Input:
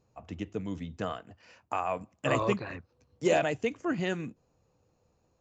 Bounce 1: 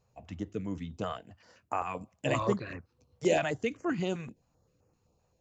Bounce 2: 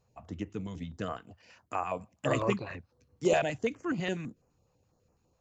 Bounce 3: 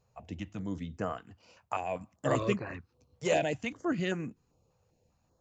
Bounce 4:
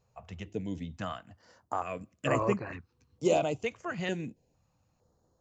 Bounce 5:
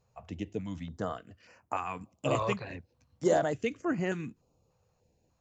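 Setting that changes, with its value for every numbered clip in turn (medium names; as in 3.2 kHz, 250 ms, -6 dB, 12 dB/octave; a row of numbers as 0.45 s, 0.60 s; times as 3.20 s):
step-sequenced notch, rate: 7.7 Hz, 12 Hz, 5.1 Hz, 2.2 Hz, 3.4 Hz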